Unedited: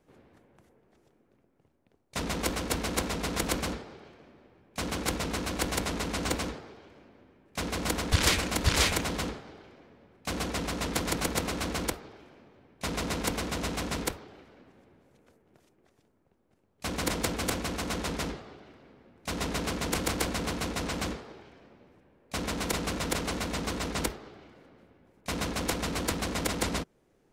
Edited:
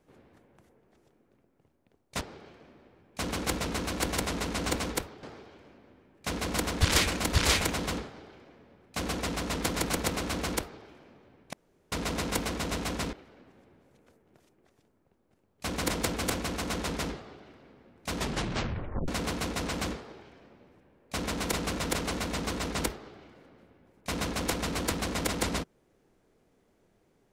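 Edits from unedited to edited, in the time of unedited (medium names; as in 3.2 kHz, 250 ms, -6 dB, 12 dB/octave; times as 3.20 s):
2.21–3.80 s: delete
12.84 s: insert room tone 0.39 s
14.05–14.33 s: move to 6.54 s
19.36 s: tape stop 0.92 s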